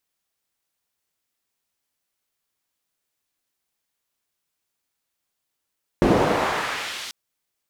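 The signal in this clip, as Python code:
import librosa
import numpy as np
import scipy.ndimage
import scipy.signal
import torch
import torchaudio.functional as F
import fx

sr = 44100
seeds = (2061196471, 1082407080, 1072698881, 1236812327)

y = fx.riser_noise(sr, seeds[0], length_s=1.09, colour='pink', kind='bandpass', start_hz=290.0, end_hz=4500.0, q=1.0, swell_db=-19.5, law='exponential')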